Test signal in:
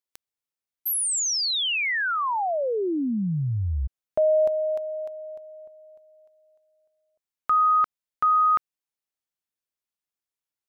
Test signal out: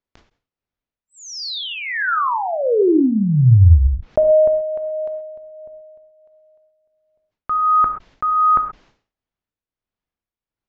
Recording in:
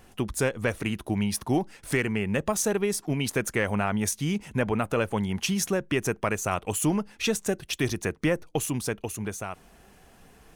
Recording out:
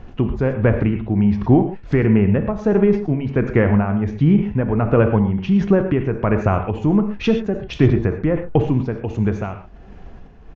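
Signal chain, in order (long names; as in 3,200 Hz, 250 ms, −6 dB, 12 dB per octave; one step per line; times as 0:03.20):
spectral tilt −2.5 dB per octave
treble cut that deepens with the level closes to 2,000 Hz, closed at −20 dBFS
amplitude tremolo 1.4 Hz, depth 56%
high-frequency loss of the air 130 metres
reverb whose tail is shaped and stops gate 150 ms flat, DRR 7 dB
downsampling to 16,000 Hz
level that may fall only so fast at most 140 dB per second
level +8 dB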